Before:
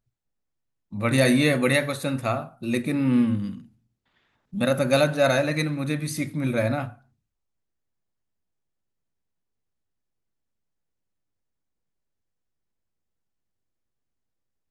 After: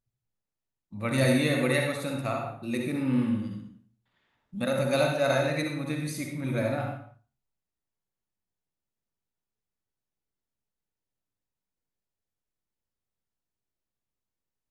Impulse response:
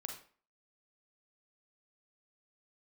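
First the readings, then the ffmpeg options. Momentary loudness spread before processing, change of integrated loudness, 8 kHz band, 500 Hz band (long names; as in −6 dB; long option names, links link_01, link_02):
10 LU, −4.5 dB, −5.0 dB, −4.0 dB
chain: -filter_complex "[1:a]atrim=start_sample=2205,afade=type=out:start_time=0.28:duration=0.01,atrim=end_sample=12789,asetrate=30429,aresample=44100[link_01];[0:a][link_01]afir=irnorm=-1:irlink=0,volume=-4.5dB"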